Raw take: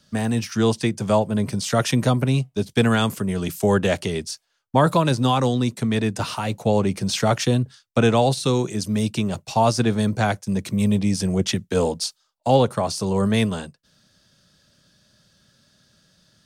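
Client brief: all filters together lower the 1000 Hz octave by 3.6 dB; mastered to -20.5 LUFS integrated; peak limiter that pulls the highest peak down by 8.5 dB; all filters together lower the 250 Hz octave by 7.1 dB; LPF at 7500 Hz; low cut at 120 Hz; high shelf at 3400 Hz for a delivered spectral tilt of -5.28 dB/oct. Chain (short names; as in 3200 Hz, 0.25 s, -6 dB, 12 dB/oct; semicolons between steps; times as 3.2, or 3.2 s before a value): HPF 120 Hz; LPF 7500 Hz; bell 250 Hz -8.5 dB; bell 1000 Hz -3.5 dB; high shelf 3400 Hz -8 dB; gain +7.5 dB; limiter -8.5 dBFS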